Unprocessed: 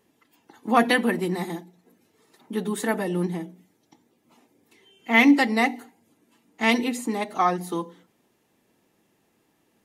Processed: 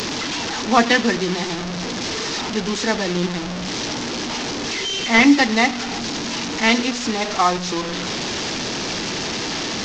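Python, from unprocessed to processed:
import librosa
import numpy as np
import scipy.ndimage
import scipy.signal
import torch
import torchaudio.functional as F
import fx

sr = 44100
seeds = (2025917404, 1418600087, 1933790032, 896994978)

p1 = fx.delta_mod(x, sr, bps=32000, step_db=-24.5)
p2 = fx.high_shelf(p1, sr, hz=4100.0, db=10.5)
p3 = p2 + fx.echo_single(p2, sr, ms=97, db=-21.0, dry=0)
y = F.gain(torch.from_numpy(p3), 3.5).numpy()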